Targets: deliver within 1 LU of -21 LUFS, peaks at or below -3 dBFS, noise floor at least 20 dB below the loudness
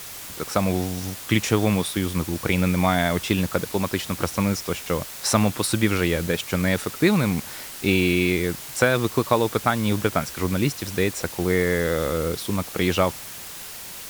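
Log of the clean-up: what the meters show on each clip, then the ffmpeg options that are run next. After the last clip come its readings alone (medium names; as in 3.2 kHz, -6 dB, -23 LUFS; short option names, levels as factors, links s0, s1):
noise floor -37 dBFS; noise floor target -43 dBFS; loudness -23.0 LUFS; peak level -3.5 dBFS; loudness target -21.0 LUFS
-> -af "afftdn=nr=6:nf=-37"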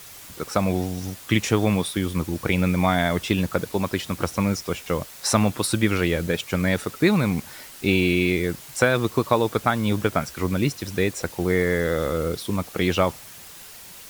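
noise floor -43 dBFS; noise floor target -44 dBFS
-> -af "afftdn=nr=6:nf=-43"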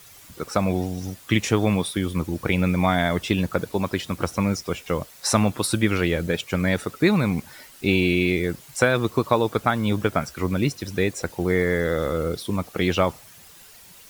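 noise floor -48 dBFS; loudness -23.5 LUFS; peak level -3.5 dBFS; loudness target -21.0 LUFS
-> -af "volume=1.33,alimiter=limit=0.708:level=0:latency=1"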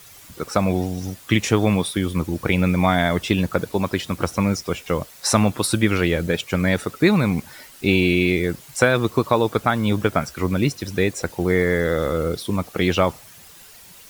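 loudness -21.0 LUFS; peak level -3.0 dBFS; noise floor -45 dBFS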